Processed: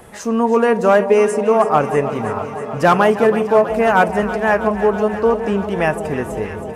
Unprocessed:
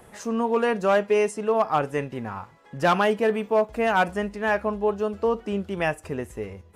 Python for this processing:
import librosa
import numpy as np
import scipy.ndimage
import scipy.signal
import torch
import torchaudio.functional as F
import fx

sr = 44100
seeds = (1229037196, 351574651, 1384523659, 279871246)

y = fx.dynamic_eq(x, sr, hz=3600.0, q=1.1, threshold_db=-44.0, ratio=4.0, max_db=-7)
y = fx.echo_alternate(y, sr, ms=161, hz=880.0, feedback_pct=88, wet_db=-11)
y = y * 10.0 ** (8.0 / 20.0)